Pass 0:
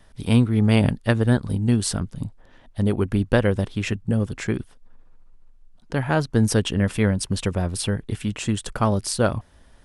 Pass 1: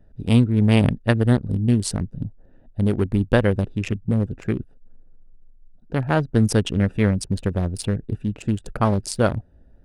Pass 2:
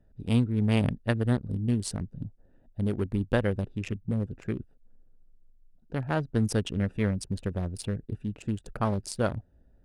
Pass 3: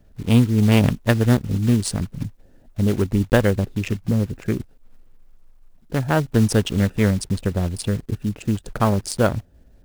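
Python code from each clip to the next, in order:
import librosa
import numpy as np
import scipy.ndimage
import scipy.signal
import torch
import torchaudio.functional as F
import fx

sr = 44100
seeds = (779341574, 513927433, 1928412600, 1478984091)

y1 = fx.wiener(x, sr, points=41)
y1 = F.gain(torch.from_numpy(y1), 1.5).numpy()
y2 = fx.cheby_harmonics(y1, sr, harmonics=(6,), levels_db=(-34,), full_scale_db=-2.5)
y2 = F.gain(torch.from_numpy(y2), -8.0).numpy()
y3 = fx.block_float(y2, sr, bits=5)
y3 = F.gain(torch.from_numpy(y3), 9.0).numpy()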